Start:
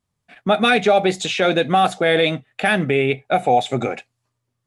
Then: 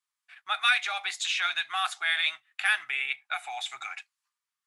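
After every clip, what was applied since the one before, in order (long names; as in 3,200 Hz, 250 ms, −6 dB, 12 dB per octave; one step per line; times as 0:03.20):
inverse Chebyshev high-pass filter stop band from 540 Hz, stop band 40 dB
level −4.5 dB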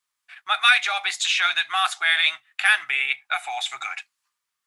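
mains-hum notches 60/120/180/240 Hz
level +7 dB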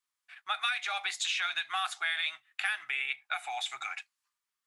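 downward compressor 6 to 1, threshold −21 dBFS, peak gain reduction 10 dB
level −7 dB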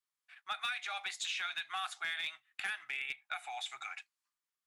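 asymmetric clip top −24 dBFS
level −6 dB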